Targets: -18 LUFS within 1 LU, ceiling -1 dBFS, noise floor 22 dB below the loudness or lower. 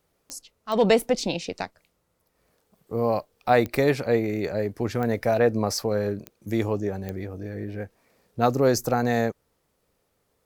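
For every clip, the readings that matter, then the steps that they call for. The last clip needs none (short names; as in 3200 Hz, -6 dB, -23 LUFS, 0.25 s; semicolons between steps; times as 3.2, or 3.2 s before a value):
clicks 6; loudness -25.0 LUFS; peak -6.0 dBFS; loudness target -18.0 LUFS
-> de-click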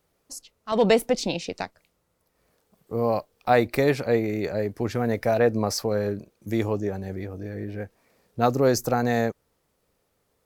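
clicks 0; loudness -25.0 LUFS; peak -6.0 dBFS; loudness target -18.0 LUFS
-> gain +7 dB; limiter -1 dBFS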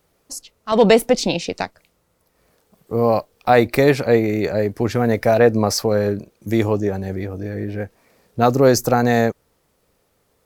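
loudness -18.5 LUFS; peak -1.0 dBFS; noise floor -66 dBFS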